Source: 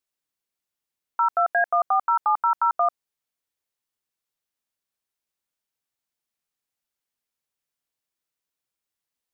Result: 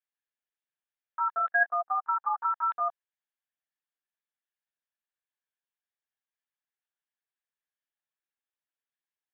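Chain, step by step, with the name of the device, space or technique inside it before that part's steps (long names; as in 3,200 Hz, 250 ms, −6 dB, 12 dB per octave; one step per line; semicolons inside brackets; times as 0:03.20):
talking toy (linear-prediction vocoder at 8 kHz pitch kept; high-pass filter 430 Hz 12 dB per octave; parametric band 1,700 Hz +9.5 dB 0.28 octaves)
level −8 dB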